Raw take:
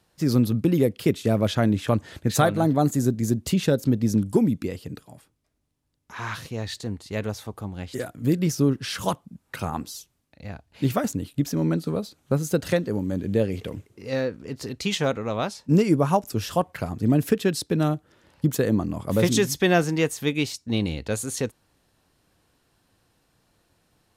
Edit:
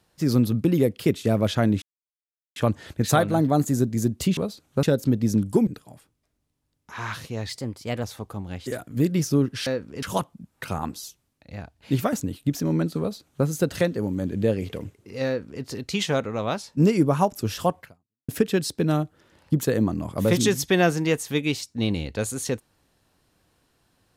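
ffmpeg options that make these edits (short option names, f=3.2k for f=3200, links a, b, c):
-filter_complex "[0:a]asplit=10[a][b][c][d][e][f][g][h][i][j];[a]atrim=end=1.82,asetpts=PTS-STARTPTS,afade=t=out:st=1.816:d=0.004:c=hsin,apad=pad_dur=0.74[k];[b]atrim=start=1.82:end=3.632,asetpts=PTS-STARTPTS,afade=t=in:d=0.004:c=hsin[l];[c]atrim=start=11.908:end=12.372[m];[d]atrim=start=3.628:end=4.472[n];[e]atrim=start=4.878:end=6.704[o];[f]atrim=start=6.7:end=7.31,asetpts=PTS-STARTPTS,asetrate=49392,aresample=44100[p];[g]atrim=start=7.306:end=8.942[q];[h]atrim=start=14.178:end=14.542[r];[i]atrim=start=8.938:end=17.2,asetpts=PTS-STARTPTS,afade=t=out:st=7.782:d=0.48:c=exp[s];[j]atrim=start=17.2,asetpts=PTS-STARTPTS,afade=t=in:d=0.004:c=hsin[t];[k][l]concat=n=2:v=0:a=1[u];[u][m]acrossfade=d=0.004:c1=hsin:c2=hsin[v];[v][n]acrossfade=d=0.004:c1=hsin:c2=hsin[w];[w][o]acrossfade=d=0.004:c1=hsin:c2=hsin[x];[x][p]acrossfade=d=0.004:c1=hsin:c2=hsin[y];[y][q]acrossfade=d=0.004:c1=hsin:c2=hsin[z];[z][r]acrossfade=d=0.004:c1=hsin:c2=hsin[aa];[s][t]concat=n=2:v=0:a=1[ab];[aa][ab]acrossfade=d=0.004:c1=hsin:c2=hsin"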